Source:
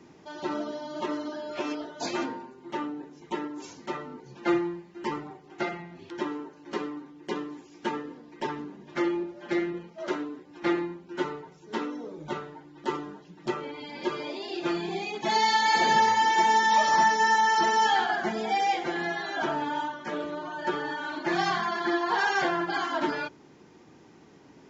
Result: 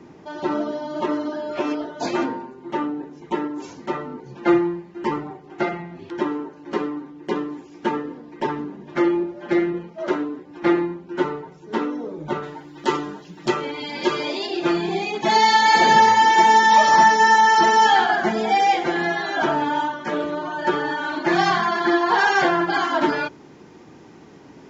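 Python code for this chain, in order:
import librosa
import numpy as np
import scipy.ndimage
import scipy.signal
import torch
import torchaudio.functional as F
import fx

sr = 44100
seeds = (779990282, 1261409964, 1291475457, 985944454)

y = fx.high_shelf(x, sr, hz=2500.0, db=fx.steps((0.0, -9.0), (12.42, 5.0), (14.46, -3.0)))
y = y * 10.0 ** (8.5 / 20.0)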